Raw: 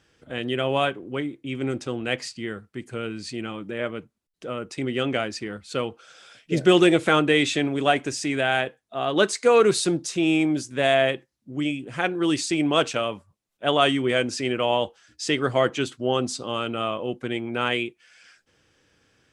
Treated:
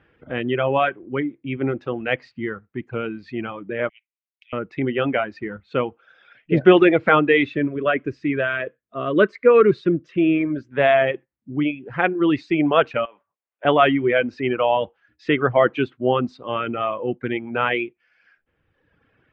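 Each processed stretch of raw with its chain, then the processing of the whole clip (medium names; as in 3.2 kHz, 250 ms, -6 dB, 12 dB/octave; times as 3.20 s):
3.89–4.53 s: steep high-pass 2 kHz 72 dB/octave + hard clipper -33 dBFS
7.45–10.72 s: Butterworth band-stop 810 Hz, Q 2.1 + treble shelf 2.1 kHz -6.5 dB
13.05–13.65 s: high-pass 570 Hz + compression 4:1, threshold -34 dBFS
whole clip: reverb removal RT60 1.5 s; low-pass 2.5 kHz 24 dB/octave; trim +5.5 dB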